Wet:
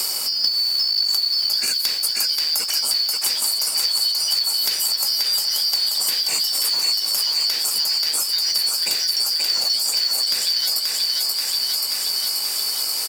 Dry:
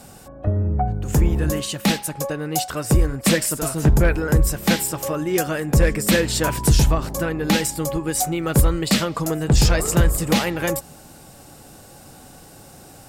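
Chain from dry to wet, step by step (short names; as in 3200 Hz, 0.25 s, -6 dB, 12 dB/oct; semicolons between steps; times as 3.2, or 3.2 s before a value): four-band scrambler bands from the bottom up 4321; HPF 220 Hz 12 dB/oct; high shelf 10000 Hz +11 dB; notch 3200 Hz, Q 12; in parallel at -2.5 dB: limiter -14.5 dBFS, peak gain reduction 14 dB; on the sum: compressor 6:1, threshold -20 dBFS, peak gain reduction 12.5 dB; short-mantissa float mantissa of 2-bit; doubler 16 ms -11 dB; on a send: thinning echo 0.532 s, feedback 65%, high-pass 420 Hz, level -4 dB; on the sum: three-band squash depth 100%; gain -1 dB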